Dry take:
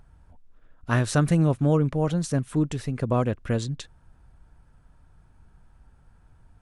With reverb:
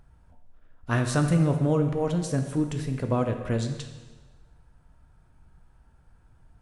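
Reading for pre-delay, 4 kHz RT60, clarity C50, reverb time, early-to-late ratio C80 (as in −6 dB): 5 ms, 1.2 s, 7.5 dB, 1.3 s, 9.0 dB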